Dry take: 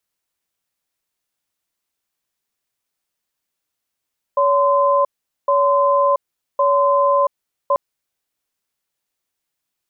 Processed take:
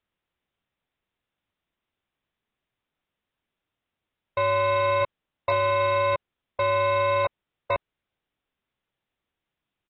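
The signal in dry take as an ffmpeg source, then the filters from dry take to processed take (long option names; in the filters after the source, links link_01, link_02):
-f lavfi -i "aevalsrc='0.178*(sin(2*PI*565*t)+sin(2*PI*1030*t))*clip(min(mod(t,1.11),0.68-mod(t,1.11))/0.005,0,1)':duration=3.39:sample_rate=44100"
-af "lowshelf=frequency=310:gain=7.5,aresample=8000,asoftclip=type=tanh:threshold=-20.5dB,aresample=44100" -ar 32000 -c:a aac -b:a 32k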